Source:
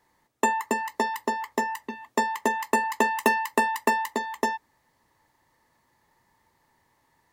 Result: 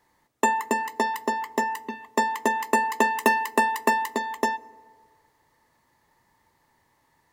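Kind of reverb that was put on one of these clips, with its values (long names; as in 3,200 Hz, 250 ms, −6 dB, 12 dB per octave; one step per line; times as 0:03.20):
feedback delay network reverb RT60 1.9 s, low-frequency decay 0.75×, high-frequency decay 0.45×, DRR 20 dB
level +1 dB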